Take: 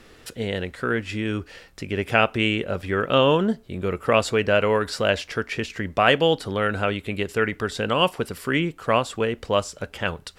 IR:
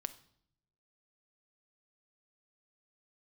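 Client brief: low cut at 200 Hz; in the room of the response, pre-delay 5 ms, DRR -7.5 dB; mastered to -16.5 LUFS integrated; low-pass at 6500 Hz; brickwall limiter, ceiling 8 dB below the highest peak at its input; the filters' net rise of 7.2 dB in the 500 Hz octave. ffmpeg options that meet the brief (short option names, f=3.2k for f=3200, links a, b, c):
-filter_complex "[0:a]highpass=200,lowpass=6.5k,equalizer=f=500:t=o:g=8.5,alimiter=limit=-8dB:level=0:latency=1,asplit=2[a][b];[1:a]atrim=start_sample=2205,adelay=5[c];[b][c]afir=irnorm=-1:irlink=0,volume=9dB[d];[a][d]amix=inputs=2:normalize=0,volume=-3dB"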